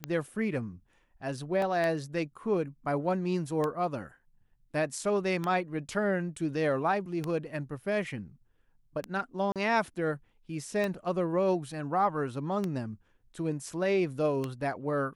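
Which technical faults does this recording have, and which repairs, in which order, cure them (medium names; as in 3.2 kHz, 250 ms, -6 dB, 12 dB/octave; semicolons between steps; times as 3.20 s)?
tick 33 1/3 rpm -18 dBFS
1.62 s: dropout 2.5 ms
9.52–9.56 s: dropout 37 ms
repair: de-click; interpolate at 1.62 s, 2.5 ms; interpolate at 9.52 s, 37 ms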